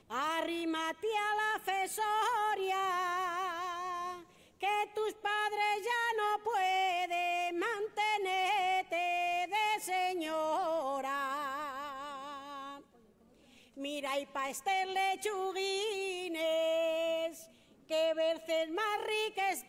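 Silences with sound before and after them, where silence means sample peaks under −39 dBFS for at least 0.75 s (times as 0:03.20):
0:12.73–0:13.79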